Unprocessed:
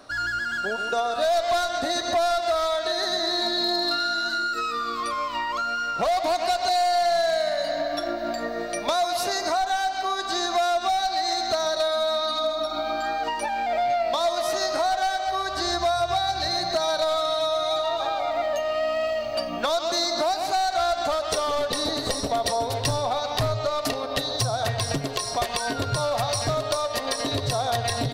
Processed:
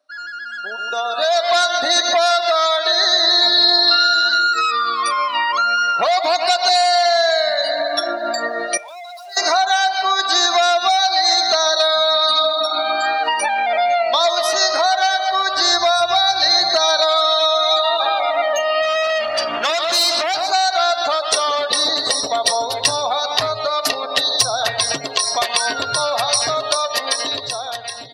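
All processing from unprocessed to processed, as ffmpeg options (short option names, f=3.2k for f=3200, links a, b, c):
-filter_complex "[0:a]asettb=1/sr,asplit=3[a][b][c];[a]atrim=end=2.114[d];[b]atrim=start=2.11:end=5.29,asetpts=PTS-STARTPTS,afade=t=in:d=0.004:c=qsin,afade=t=out:st=3.176:d=0.004:c=qsin,highpass=90,lowshelf=f=130:g=-6.5[e];[c]atrim=start=5.286[f];[d][e]acrossfade=d=0.004:c1=hsin:c2=qsin[g];[g][f]acrossfade=d=0.004:c1=qsin:c2=hsin,asettb=1/sr,asplit=3[h][i][j];[h]atrim=end=8.774[k];[i]atrim=start=8.77:end=9.37,asetpts=PTS-STARTPTS,afade=t=in:d=0.004:c=qsin,afade=t=out:st=0.596:d=0.004:c=qsin,highpass=f=500:w=0.5412,highpass=f=500:w=1.3066,aeval=exprs='(tanh(100*val(0)+0.4)-tanh(0.4))/100':c=same[l];[j]atrim=start=9.366[m];[k][l]acrossfade=d=0.004:c1=hsin:c2=qsin[n];[n][m]acrossfade=d=0.004:c1=qsin:c2=hsin,asettb=1/sr,asplit=3[o][p][q];[o]atrim=end=18.824[r];[p]atrim=start=18.82:end=20.41,asetpts=PTS-STARTPTS,afade=t=in:d=0.004:c=qsin,afade=t=out:st=1.586:d=0.004:c=qsin,highshelf=f=9.2k:g=-6,aeval=exprs='(tanh(39.8*val(0)+0.75)-tanh(0.75))/39.8':c=same,acontrast=84[s];[q]atrim=start=20.406[t];[r][s]acrossfade=d=0.004:c1=hsin:c2=qsin[u];[u][t]acrossfade=d=0.004:c1=qsin:c2=hsin,afftdn=nr=21:nf=-38,highpass=f=1.5k:p=1,dynaudnorm=f=300:g=7:m=16.5dB,volume=-1dB"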